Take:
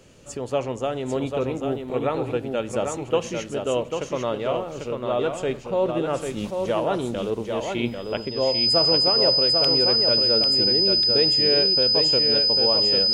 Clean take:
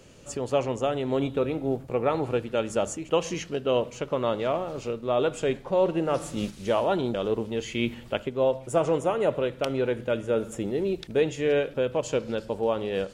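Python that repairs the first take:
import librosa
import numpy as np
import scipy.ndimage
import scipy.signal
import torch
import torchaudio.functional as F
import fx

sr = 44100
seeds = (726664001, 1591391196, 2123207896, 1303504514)

y = fx.notch(x, sr, hz=5000.0, q=30.0)
y = fx.fix_echo_inverse(y, sr, delay_ms=795, level_db=-5.0)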